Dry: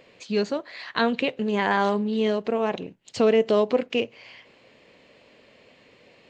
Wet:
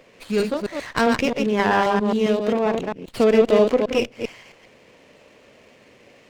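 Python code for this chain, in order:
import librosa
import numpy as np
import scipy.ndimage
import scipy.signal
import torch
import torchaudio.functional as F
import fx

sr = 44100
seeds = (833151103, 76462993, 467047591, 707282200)

y = fx.reverse_delay(x, sr, ms=133, wet_db=-3.5)
y = fx.running_max(y, sr, window=5)
y = y * 10.0 ** (2.5 / 20.0)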